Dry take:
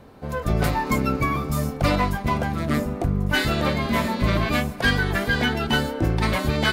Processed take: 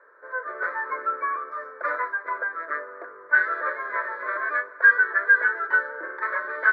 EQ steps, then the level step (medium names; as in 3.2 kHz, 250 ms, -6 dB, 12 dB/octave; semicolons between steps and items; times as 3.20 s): high-pass 500 Hz 24 dB/octave; four-pole ladder low-pass 1.8 kHz, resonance 70%; static phaser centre 760 Hz, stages 6; +7.5 dB